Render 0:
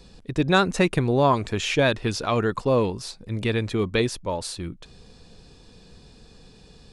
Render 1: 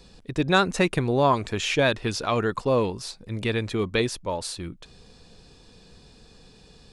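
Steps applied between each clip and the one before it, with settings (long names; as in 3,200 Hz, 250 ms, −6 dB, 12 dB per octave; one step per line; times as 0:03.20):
low-shelf EQ 400 Hz −3 dB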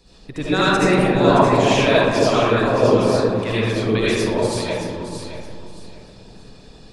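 delay that swaps between a low-pass and a high-pass 311 ms, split 850 Hz, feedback 51%, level −2 dB
comb and all-pass reverb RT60 1.5 s, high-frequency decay 0.45×, pre-delay 35 ms, DRR −9.5 dB
harmonic and percussive parts rebalanced percussive +7 dB
level −7.5 dB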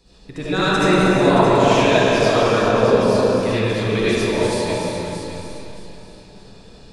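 reverb whose tail is shaped and stops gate 450 ms flat, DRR 0 dB
level −2.5 dB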